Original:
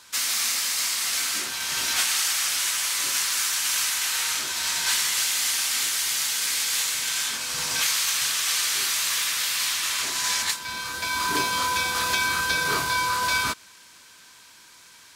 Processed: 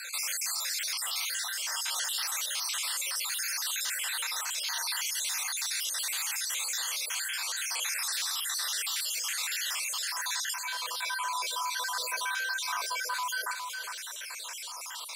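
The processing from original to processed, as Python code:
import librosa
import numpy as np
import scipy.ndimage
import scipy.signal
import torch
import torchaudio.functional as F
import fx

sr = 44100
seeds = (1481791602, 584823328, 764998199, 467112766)

p1 = fx.spec_dropout(x, sr, seeds[0], share_pct=59)
p2 = scipy.signal.sosfilt(scipy.signal.butter(6, 500.0, 'highpass', fs=sr, output='sos'), p1)
p3 = p2 + fx.echo_single(p2, sr, ms=409, db=-17.5, dry=0)
p4 = fx.env_flatten(p3, sr, amount_pct=70)
y = p4 * librosa.db_to_amplitude(-7.5)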